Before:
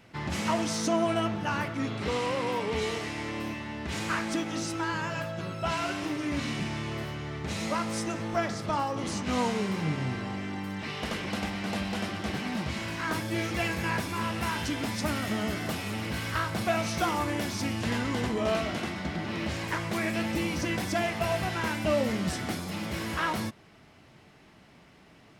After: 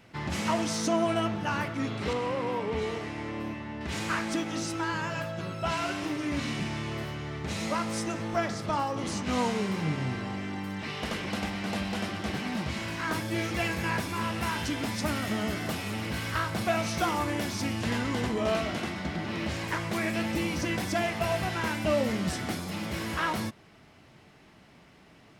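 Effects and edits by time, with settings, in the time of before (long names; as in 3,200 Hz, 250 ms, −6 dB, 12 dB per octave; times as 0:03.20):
0:02.13–0:03.81: high-shelf EQ 2,700 Hz −10.5 dB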